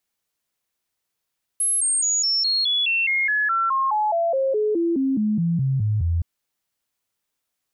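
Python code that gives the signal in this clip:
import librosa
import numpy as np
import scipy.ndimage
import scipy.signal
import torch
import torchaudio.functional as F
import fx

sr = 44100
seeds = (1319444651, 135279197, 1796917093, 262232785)

y = fx.stepped_sweep(sr, from_hz=10800.0, direction='down', per_octave=3, tones=22, dwell_s=0.21, gap_s=0.0, level_db=-18.0)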